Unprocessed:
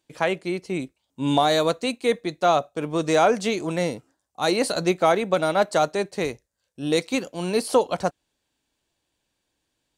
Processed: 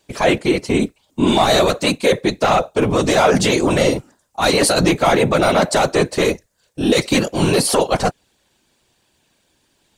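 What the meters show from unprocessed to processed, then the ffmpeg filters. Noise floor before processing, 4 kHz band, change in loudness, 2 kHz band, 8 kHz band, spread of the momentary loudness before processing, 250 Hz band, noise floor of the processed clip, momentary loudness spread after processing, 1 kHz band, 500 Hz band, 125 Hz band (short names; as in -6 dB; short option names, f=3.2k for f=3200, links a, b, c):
-78 dBFS, +9.0 dB, +7.0 dB, +8.5 dB, +11.5 dB, 10 LU, +8.5 dB, -64 dBFS, 6 LU, +5.5 dB, +6.0 dB, +10.5 dB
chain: -af "apsyclip=24dB,afftfilt=real='hypot(re,im)*cos(2*PI*random(0))':imag='hypot(re,im)*sin(2*PI*random(1))':win_size=512:overlap=0.75,volume=-4dB"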